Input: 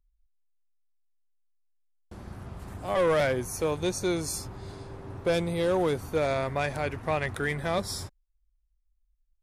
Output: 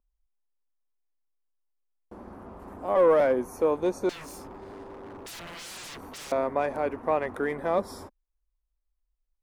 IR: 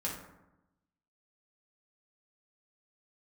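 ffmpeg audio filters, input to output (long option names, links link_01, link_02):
-filter_complex "[0:a]equalizer=frequency=125:width_type=o:width=1:gain=-11,equalizer=frequency=250:width_type=o:width=1:gain=11,equalizer=frequency=500:width_type=o:width=1:gain=8,equalizer=frequency=1000:width_type=o:width=1:gain=9,equalizer=frequency=4000:width_type=o:width=1:gain=-6,equalizer=frequency=8000:width_type=o:width=1:gain=-6,asettb=1/sr,asplit=3[link_01][link_02][link_03];[link_01]atrim=end=4.094[link_04];[link_02]atrim=start=4.09:end=6.32,asetpts=PTS-STARTPTS,afade=type=in:duration=0.004:curve=qsin,afade=type=out:start_time=2.226:duration=0.004:curve=qsin,aeval=exprs='0.0299*(abs(mod(val(0)/0.0299+3,4)-2)-1)':channel_layout=same[link_05];[link_03]atrim=start=6.316[link_06];[link_04][link_05]acrossfade=duration=0.004:curve1=hsin:curve2=qsin[link_07];[link_07][link_06]acrossfade=duration=0.004:curve1=qsin:curve2=hsin,volume=-6.5dB"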